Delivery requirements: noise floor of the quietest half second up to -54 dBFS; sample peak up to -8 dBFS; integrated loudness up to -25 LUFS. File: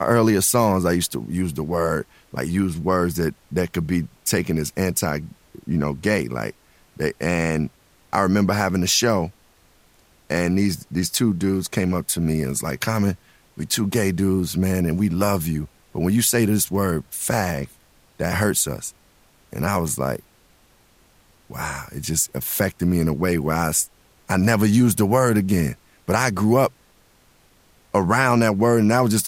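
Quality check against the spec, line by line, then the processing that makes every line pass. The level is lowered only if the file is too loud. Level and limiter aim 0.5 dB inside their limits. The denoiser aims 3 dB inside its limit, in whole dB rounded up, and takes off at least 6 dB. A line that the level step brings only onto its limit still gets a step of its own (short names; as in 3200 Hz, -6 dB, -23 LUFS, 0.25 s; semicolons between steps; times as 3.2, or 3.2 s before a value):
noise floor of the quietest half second -56 dBFS: OK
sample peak -3.5 dBFS: fail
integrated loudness -21.5 LUFS: fail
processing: gain -4 dB; limiter -8.5 dBFS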